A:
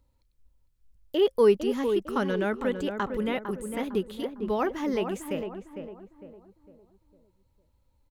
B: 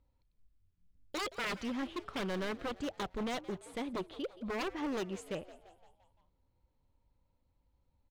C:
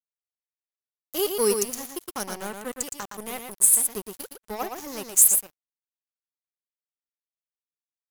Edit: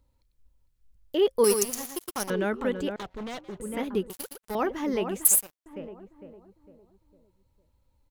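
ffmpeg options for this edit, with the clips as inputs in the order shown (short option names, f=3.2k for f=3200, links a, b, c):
-filter_complex "[2:a]asplit=3[a][b][c];[0:a]asplit=5[d][e][f][g][h];[d]atrim=end=1.442[i];[a]atrim=start=1.438:end=2.302[j];[e]atrim=start=2.298:end=2.962[k];[1:a]atrim=start=2.958:end=3.602[l];[f]atrim=start=3.598:end=4.102[m];[b]atrim=start=4.098:end=4.552[n];[g]atrim=start=4.548:end=5.252[o];[c]atrim=start=5.248:end=5.662[p];[h]atrim=start=5.658[q];[i][j]acrossfade=d=0.004:c1=hsin:c2=hsin[r];[r][k]acrossfade=d=0.004:c1=hsin:c2=hsin[s];[s][l]acrossfade=d=0.004:c1=hsin:c2=hsin[t];[t][m]acrossfade=d=0.004:c1=hsin:c2=hsin[u];[u][n]acrossfade=d=0.004:c1=hsin:c2=hsin[v];[v][o]acrossfade=d=0.004:c1=hsin:c2=hsin[w];[w][p]acrossfade=d=0.004:c1=hsin:c2=hsin[x];[x][q]acrossfade=d=0.004:c1=hsin:c2=hsin"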